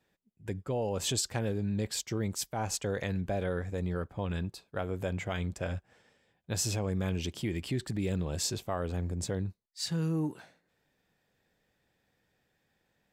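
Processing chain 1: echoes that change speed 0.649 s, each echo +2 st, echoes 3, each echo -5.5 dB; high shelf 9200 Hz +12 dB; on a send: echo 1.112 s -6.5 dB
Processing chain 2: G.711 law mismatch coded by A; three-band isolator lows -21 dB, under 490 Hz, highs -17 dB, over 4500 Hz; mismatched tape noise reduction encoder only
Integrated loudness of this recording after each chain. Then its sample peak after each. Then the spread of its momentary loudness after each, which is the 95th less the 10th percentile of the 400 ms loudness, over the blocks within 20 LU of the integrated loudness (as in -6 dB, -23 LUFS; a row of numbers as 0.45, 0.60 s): -31.0, -43.0 LUFS; -13.5, -23.0 dBFS; 11, 8 LU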